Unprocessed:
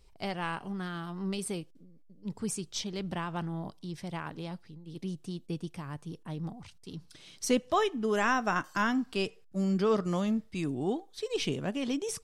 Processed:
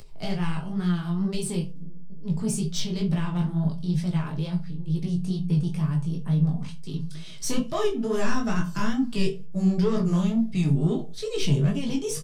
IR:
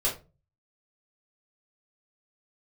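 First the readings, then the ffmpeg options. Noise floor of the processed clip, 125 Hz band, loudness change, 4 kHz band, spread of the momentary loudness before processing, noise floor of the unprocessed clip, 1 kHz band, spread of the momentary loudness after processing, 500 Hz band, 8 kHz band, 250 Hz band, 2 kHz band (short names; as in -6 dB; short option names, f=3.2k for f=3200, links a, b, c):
-33 dBFS, +14.0 dB, +6.5 dB, +3.0 dB, 15 LU, -57 dBFS, -3.0 dB, 9 LU, +2.5 dB, +4.5 dB, +8.0 dB, -2.5 dB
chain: -filter_complex "[0:a]acrossover=split=300|3000[a][b][c];[b]acompressor=threshold=-50dB:ratio=1.5[d];[a][d][c]amix=inputs=3:normalize=0,asoftclip=type=tanh:threshold=-28dB,asplit=2[e][f];[f]aecho=1:1:4.7:0.94[g];[1:a]atrim=start_sample=2205[h];[g][h]afir=irnorm=-1:irlink=0,volume=-12.5dB[i];[e][i]amix=inputs=2:normalize=0,acompressor=mode=upward:threshold=-46dB:ratio=2.5,flanger=delay=17:depth=6.4:speed=2.2,equalizer=f=150:t=o:w=0.67:g=13.5,volume=6.5dB"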